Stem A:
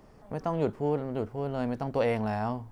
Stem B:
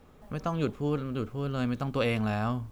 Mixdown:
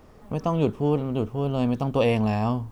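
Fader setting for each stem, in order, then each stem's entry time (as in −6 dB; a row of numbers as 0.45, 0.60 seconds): +2.5, 0.0 decibels; 0.00, 0.00 seconds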